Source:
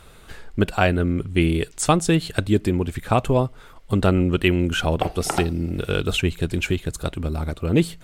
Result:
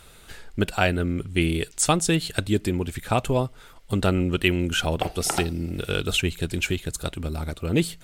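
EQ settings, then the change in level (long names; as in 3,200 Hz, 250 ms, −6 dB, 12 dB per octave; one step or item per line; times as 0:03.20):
high-shelf EQ 2,400 Hz +7.5 dB
notch filter 1,100 Hz, Q 17
−4.0 dB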